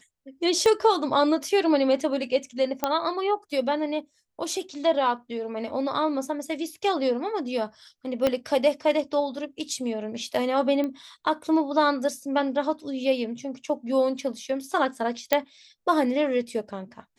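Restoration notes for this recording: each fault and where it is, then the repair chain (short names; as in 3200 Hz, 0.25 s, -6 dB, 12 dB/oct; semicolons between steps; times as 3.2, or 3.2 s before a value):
0.66 pop -12 dBFS
2.84 pop -9 dBFS
8.27 pop -10 dBFS
10.84 pop -18 dBFS
15.33 pop -6 dBFS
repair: de-click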